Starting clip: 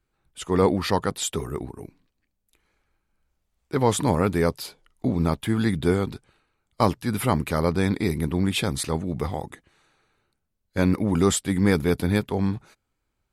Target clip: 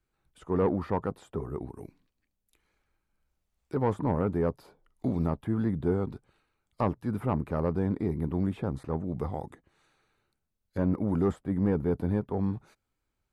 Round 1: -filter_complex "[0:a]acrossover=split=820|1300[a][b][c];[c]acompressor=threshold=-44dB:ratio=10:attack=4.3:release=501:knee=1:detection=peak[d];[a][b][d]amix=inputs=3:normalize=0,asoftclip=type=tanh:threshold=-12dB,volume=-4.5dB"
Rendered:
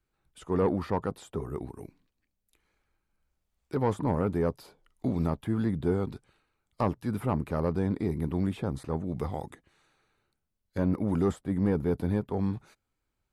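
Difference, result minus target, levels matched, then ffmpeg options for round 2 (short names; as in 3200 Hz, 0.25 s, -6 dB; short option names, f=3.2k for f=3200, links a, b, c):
compressor: peak gain reduction -8 dB
-filter_complex "[0:a]acrossover=split=820|1300[a][b][c];[c]acompressor=threshold=-53dB:ratio=10:attack=4.3:release=501:knee=1:detection=peak[d];[a][b][d]amix=inputs=3:normalize=0,asoftclip=type=tanh:threshold=-12dB,volume=-4.5dB"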